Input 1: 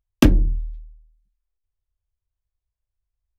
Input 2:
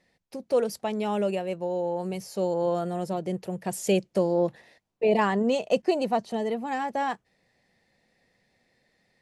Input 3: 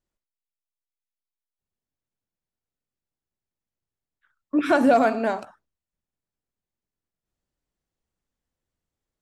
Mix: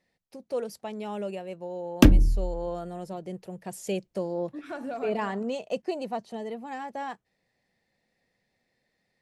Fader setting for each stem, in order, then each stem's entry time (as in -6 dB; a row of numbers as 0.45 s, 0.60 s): -1.5 dB, -7.0 dB, -18.0 dB; 1.80 s, 0.00 s, 0.00 s